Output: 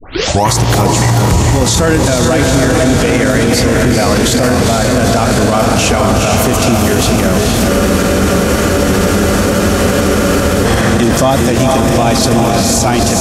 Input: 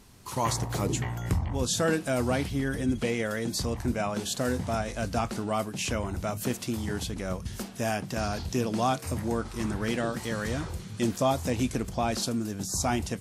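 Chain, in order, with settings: tape start at the beginning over 0.48 s; on a send: diffused feedback echo 0.461 s, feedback 70%, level -3 dB; on the sum: spectral freeze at 7.71, 2.94 s; maximiser +24.5 dB; gain -1 dB

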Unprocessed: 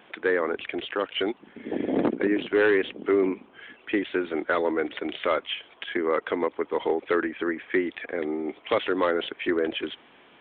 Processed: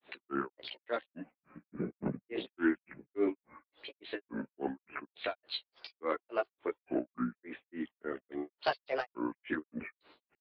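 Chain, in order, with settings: grains 0.2 s, grains 3.5/s, pitch spread up and down by 7 st; chorus voices 2, 0.2 Hz, delay 15 ms, depth 2 ms; gain -2.5 dB

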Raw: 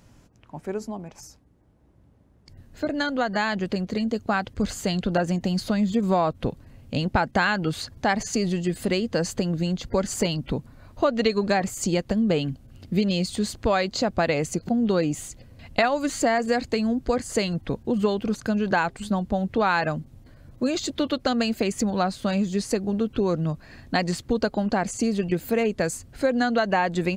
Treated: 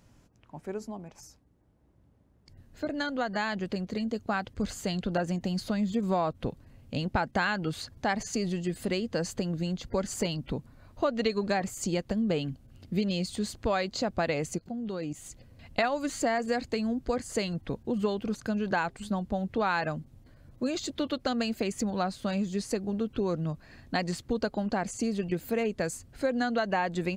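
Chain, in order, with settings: 14.58–15.26 level quantiser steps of 14 dB; gain -6 dB

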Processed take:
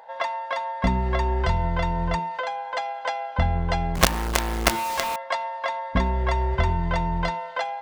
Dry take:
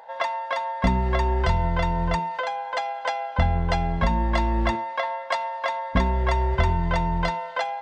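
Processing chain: 3.95–5.16 companded quantiser 2-bit; gain -1 dB

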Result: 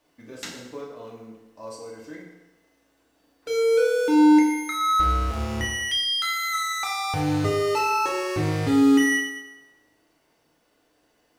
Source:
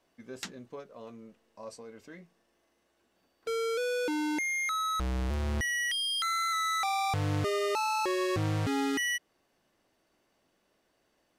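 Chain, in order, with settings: companded quantiser 8-bit; FDN reverb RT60 1.1 s, low-frequency decay 0.75×, high-frequency decay 0.8×, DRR -3 dB; gain +1.5 dB

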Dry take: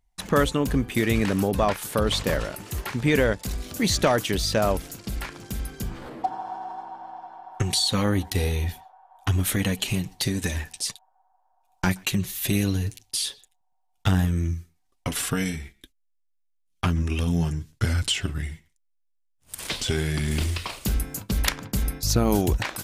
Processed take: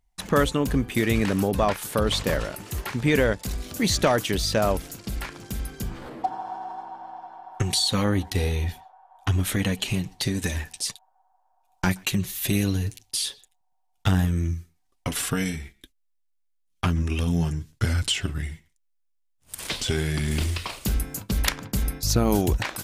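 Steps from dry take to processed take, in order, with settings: 8.04–10.35 high shelf 11000 Hz -8.5 dB

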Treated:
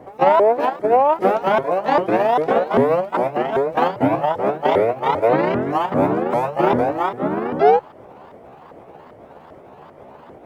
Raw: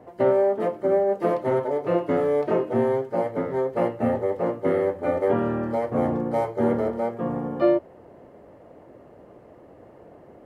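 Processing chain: repeated pitch sweeps +9.5 st, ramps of 0.396 s; attack slew limiter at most 550 dB/s; gain +7 dB

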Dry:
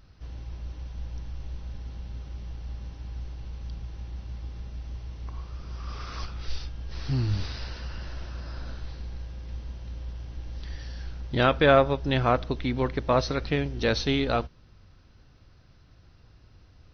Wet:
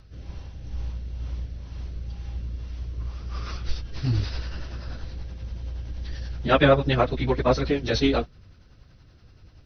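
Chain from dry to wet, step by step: rotary speaker horn 1.2 Hz, later 6 Hz, at 5.36; plain phase-vocoder stretch 0.57×; gain +8 dB

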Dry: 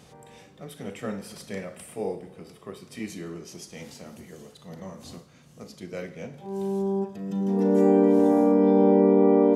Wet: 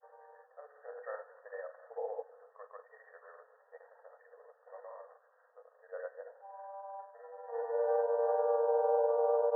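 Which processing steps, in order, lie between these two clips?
grains 0.1 s, pitch spread up and down by 0 st; brick-wall FIR band-pass 450–1900 Hz; gain -4 dB

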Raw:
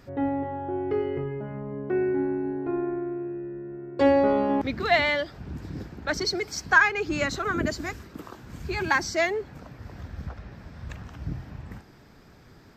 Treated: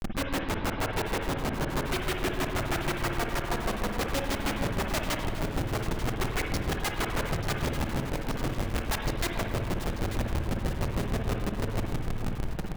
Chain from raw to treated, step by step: tilt -4.5 dB/oct; notch 430 Hz, Q 12; in parallel at +3 dB: compressor 10:1, threshold -28 dBFS, peak gain reduction 19 dB; on the sum: soft clip -13.5 dBFS, distortion -13 dB; grains 80 ms, grains 6.3/s, spray 17 ms; added harmonics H 3 -12 dB, 5 -23 dB, 7 -25 dB, 8 -10 dB, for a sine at -13.5 dBFS; Schmitt trigger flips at -36.5 dBFS; echo with dull and thin repeats by turns 0.444 s, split 970 Hz, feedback 70%, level -8 dB; on a send at -3 dB: reverb RT60 1.1 s, pre-delay 52 ms

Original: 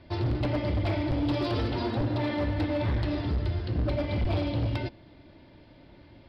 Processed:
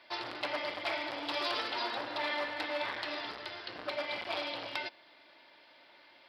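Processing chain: HPF 1000 Hz 12 dB/oct; gain +4 dB

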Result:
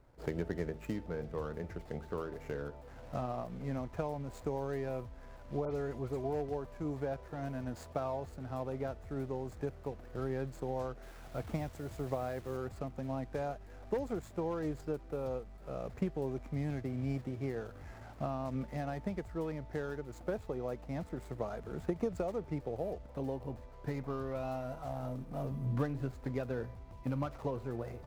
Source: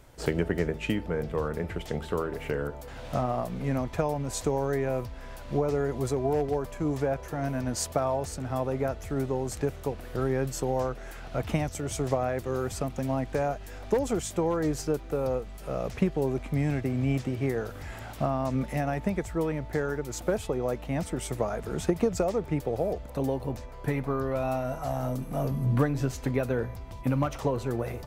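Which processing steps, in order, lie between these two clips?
median filter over 15 samples; 5.65–6.24 dispersion highs, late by 69 ms, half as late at 2800 Hz; 11.02–12.57 requantised 8-bit, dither none; gain -9 dB

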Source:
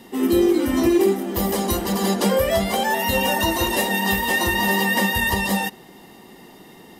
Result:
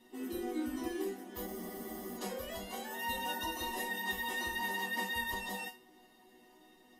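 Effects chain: resonator bank B3 major, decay 0.26 s; spectral freeze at 1.48, 0.69 s

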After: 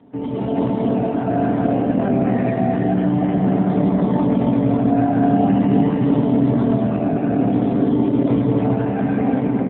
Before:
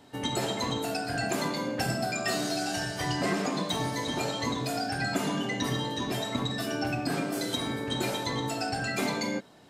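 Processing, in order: air absorption 320 m; in parallel at +0.5 dB: pump 107 bpm, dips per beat 1, -9 dB, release 0.17 s; on the sum: HPF 81 Hz 6 dB/oct; limiter -21 dBFS, peak gain reduction 8.5 dB; tilt shelf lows +7.5 dB, about 780 Hz; comb 4.3 ms, depth 32%; echo 0.322 s -4 dB; reverb RT60 2.8 s, pre-delay 80 ms, DRR -4 dB; AMR-NB 7.4 kbps 8000 Hz

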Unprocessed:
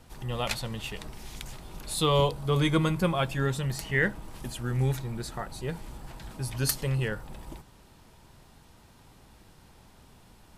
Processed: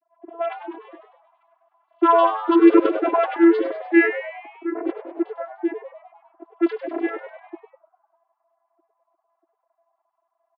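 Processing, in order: sine-wave speech; vocoder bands 16, saw 336 Hz; low-pass opened by the level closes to 450 Hz, open at -22.5 dBFS; frequency-shifting echo 0.1 s, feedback 57%, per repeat +100 Hz, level -11.5 dB; gain +8.5 dB

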